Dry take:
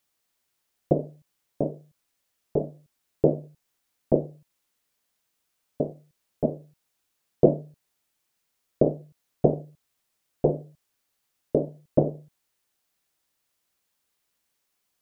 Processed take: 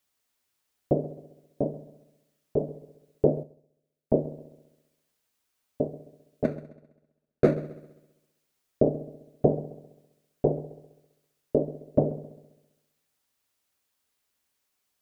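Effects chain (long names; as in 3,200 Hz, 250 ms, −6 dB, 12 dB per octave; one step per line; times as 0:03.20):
0:06.44–0:07.55: running median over 41 samples
notch comb filter 170 Hz
echo machine with several playback heads 66 ms, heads first and second, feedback 49%, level −19 dB
0:03.43–0:04.13: expander for the loud parts 1.5 to 1, over −53 dBFS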